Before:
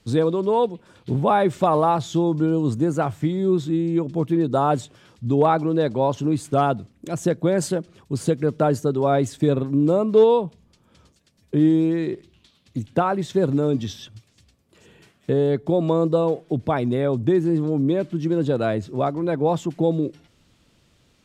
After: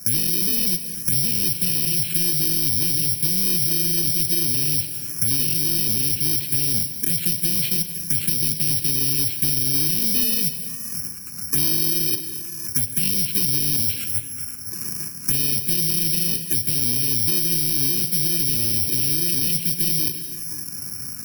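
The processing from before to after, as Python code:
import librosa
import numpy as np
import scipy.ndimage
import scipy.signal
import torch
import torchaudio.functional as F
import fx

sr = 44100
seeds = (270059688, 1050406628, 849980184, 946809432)

p1 = fx.bit_reversed(x, sr, seeds[0], block=64)
p2 = (np.kron(scipy.signal.resample_poly(p1, 1, 8), np.eye(8)[0]) * 8)[:len(p1)]
p3 = fx.low_shelf(p2, sr, hz=200.0, db=-3.5)
p4 = fx.over_compress(p3, sr, threshold_db=-24.0, ratio=-0.5)
p5 = p3 + F.gain(torch.from_numpy(p4), 0.0).numpy()
p6 = scipy.signal.sosfilt(scipy.signal.butter(2, 120.0, 'highpass', fs=sr, output='sos'), p5)
p7 = fx.peak_eq(p6, sr, hz=810.0, db=-10.5, octaves=1.3)
p8 = 10.0 ** (-5.0 / 20.0) * np.tanh(p7 / 10.0 ** (-5.0 / 20.0))
p9 = p8 + fx.echo_single(p8, sr, ms=513, db=-21.5, dry=0)
p10 = fx.env_phaser(p9, sr, low_hz=550.0, high_hz=1300.0, full_db=-14.0)
p11 = fx.rev_gated(p10, sr, seeds[1], gate_ms=290, shape='flat', drr_db=11.5)
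p12 = fx.band_squash(p11, sr, depth_pct=70)
y = F.gain(torch.from_numpy(p12), -1.0).numpy()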